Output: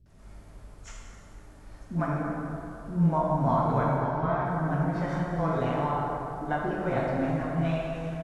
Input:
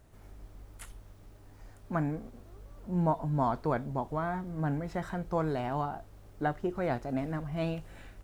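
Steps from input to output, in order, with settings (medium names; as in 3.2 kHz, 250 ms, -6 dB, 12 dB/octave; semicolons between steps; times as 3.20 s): knee-point frequency compression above 3.3 kHz 1.5:1; 3.90–4.39 s: low-pass 5.3 kHz 24 dB/octave; bands offset in time lows, highs 60 ms, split 360 Hz; plate-style reverb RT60 3 s, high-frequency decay 0.5×, DRR -4.5 dB; SBC 128 kbps 32 kHz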